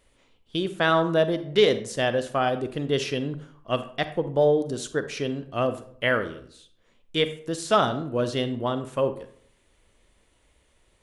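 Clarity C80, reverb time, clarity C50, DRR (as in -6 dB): 16.0 dB, 0.60 s, 12.0 dB, 10.5 dB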